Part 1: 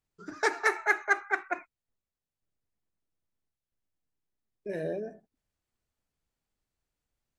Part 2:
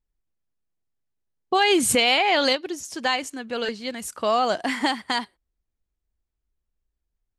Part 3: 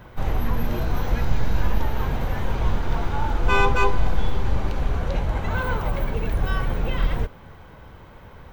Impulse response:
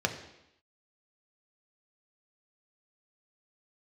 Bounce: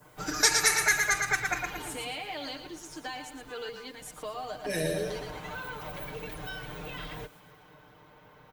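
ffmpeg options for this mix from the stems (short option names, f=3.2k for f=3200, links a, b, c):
-filter_complex "[0:a]crystalizer=i=9:c=0,alimiter=limit=-11dB:level=0:latency=1:release=46,volume=2.5dB,asplit=3[a][b][c];[b]volume=-5.5dB[d];[1:a]acompressor=threshold=-23dB:ratio=6,volume=-13.5dB,asplit=2[e][f];[f]volume=-9dB[g];[2:a]highpass=f=220:p=1,acompressor=threshold=-29dB:ratio=6,adynamicequalizer=threshold=0.00316:dfrequency=2300:dqfactor=0.7:tfrequency=2300:tqfactor=0.7:attack=5:release=100:ratio=0.375:range=3.5:mode=boostabove:tftype=highshelf,volume=1.5dB,afade=t=out:st=1.82:d=0.32:silence=0.266073,afade=t=in:st=4.54:d=0.49:silence=0.237137[h];[c]apad=whole_len=325835[i];[e][i]sidechaincompress=threshold=-36dB:ratio=8:attack=16:release=390[j];[d][g]amix=inputs=2:normalize=0,aecho=0:1:114|228|342|456|570:1|0.35|0.122|0.0429|0.015[k];[a][j][h][k]amix=inputs=4:normalize=0,aecho=1:1:6.6:0.93,acrossover=split=190|3000[l][m][n];[m]acompressor=threshold=-34dB:ratio=2[o];[l][o][n]amix=inputs=3:normalize=0"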